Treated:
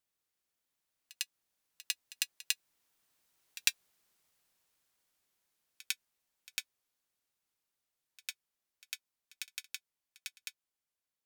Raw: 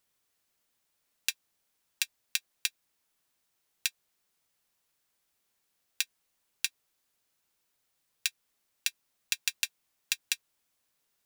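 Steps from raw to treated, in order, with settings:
source passing by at 0:03.69, 21 m/s, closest 21 metres
echo ahead of the sound 101 ms −19 dB
level +2.5 dB

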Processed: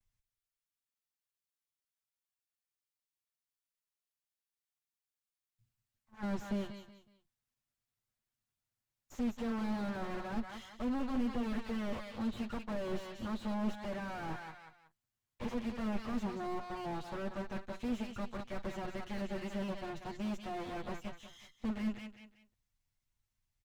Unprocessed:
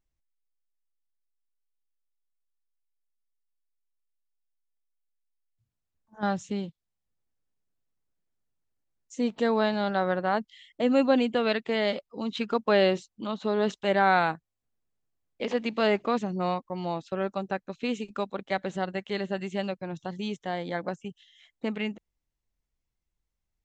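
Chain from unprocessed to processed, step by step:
lower of the sound and its delayed copy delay 8.4 ms
parametric band 400 Hz −10.5 dB 1.7 octaves
reversed playback
downward compressor 6 to 1, threshold −31 dBFS, peak gain reduction 10.5 dB
reversed playback
repeating echo 185 ms, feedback 31%, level −14 dB
slew-rate limiting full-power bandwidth 7.1 Hz
level +2 dB

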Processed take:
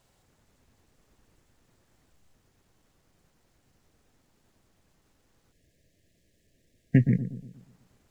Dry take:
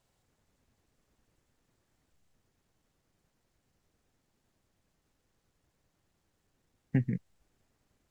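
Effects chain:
bucket-brigade delay 119 ms, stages 1,024, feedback 46%, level −11 dB
gain on a spectral selection 0:05.52–0:07.54, 690–1,600 Hz −21 dB
level +8 dB

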